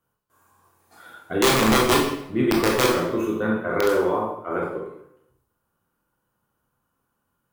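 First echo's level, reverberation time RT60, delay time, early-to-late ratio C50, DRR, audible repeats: no echo, 0.75 s, no echo, 3.5 dB, -2.0 dB, no echo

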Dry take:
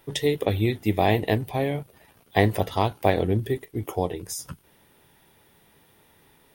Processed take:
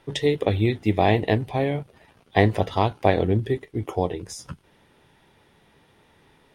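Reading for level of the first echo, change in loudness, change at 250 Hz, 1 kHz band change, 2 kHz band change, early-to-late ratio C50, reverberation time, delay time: no echo, +2.0 dB, +2.0 dB, +1.5 dB, +1.5 dB, no reverb, no reverb, no echo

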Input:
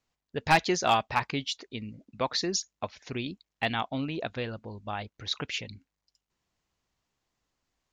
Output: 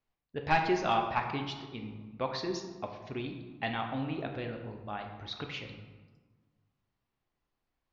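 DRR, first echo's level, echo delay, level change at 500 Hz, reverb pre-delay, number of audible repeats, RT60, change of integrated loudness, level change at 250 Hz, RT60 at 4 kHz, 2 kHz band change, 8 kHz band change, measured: 3.0 dB, no echo, no echo, -2.5 dB, 3 ms, no echo, 1.4 s, -4.0 dB, -2.0 dB, 0.80 s, -5.0 dB, -16.5 dB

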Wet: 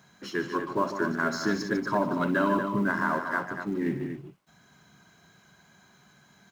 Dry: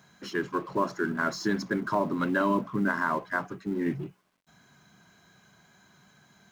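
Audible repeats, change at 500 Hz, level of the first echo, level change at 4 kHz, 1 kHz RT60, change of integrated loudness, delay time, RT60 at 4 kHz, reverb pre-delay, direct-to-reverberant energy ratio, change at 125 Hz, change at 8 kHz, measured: 3, +1.0 dB, -13.5 dB, +1.0 dB, no reverb, +1.0 dB, 62 ms, no reverb, no reverb, no reverb, +1.0 dB, +1.0 dB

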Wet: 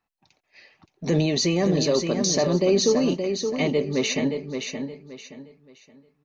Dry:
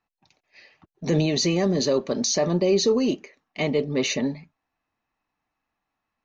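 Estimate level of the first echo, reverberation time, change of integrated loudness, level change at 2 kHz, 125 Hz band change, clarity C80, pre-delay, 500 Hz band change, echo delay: -6.5 dB, no reverb, 0.0 dB, +1.0 dB, +1.0 dB, no reverb, no reverb, +1.0 dB, 572 ms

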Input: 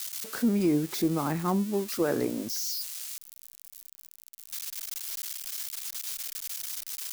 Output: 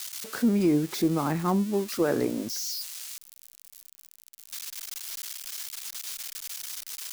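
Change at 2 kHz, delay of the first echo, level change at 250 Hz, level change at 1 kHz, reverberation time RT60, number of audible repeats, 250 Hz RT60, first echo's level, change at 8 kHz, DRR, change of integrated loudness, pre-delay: +2.0 dB, no echo, +2.0 dB, +2.0 dB, no reverb, no echo, no reverb, no echo, 0.0 dB, no reverb, +1.5 dB, no reverb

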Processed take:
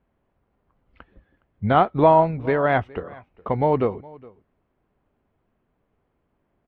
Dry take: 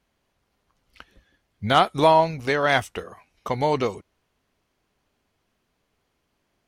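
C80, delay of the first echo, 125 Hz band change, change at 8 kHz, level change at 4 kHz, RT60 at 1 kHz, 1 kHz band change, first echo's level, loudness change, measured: no reverb, 414 ms, +4.5 dB, under -30 dB, -13.0 dB, no reverb, +0.5 dB, -23.0 dB, +1.0 dB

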